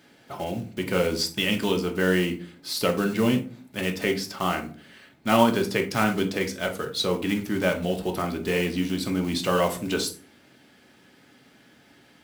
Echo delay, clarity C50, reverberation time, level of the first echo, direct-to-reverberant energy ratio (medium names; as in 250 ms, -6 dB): no echo, 12.0 dB, 0.40 s, no echo, 3.5 dB